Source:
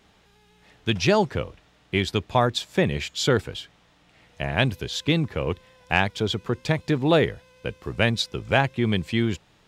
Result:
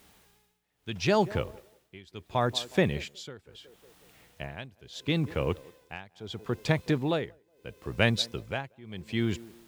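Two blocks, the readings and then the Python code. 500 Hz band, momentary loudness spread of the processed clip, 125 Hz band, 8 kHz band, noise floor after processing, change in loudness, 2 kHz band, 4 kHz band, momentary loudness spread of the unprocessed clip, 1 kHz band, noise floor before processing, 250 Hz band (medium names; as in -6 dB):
-6.5 dB, 18 LU, -6.5 dB, -7.5 dB, -71 dBFS, -6.0 dB, -8.0 dB, -7.0 dB, 12 LU, -7.5 dB, -60 dBFS, -6.5 dB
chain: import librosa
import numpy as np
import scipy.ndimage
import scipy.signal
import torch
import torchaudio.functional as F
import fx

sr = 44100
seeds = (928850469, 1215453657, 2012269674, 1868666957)

y = fx.echo_banded(x, sr, ms=183, feedback_pct=42, hz=470.0, wet_db=-18)
y = fx.quant_dither(y, sr, seeds[0], bits=10, dither='triangular')
y = y * (1.0 - 0.94 / 2.0 + 0.94 / 2.0 * np.cos(2.0 * np.pi * 0.74 * (np.arange(len(y)) / sr)))
y = F.gain(torch.from_numpy(y), -2.5).numpy()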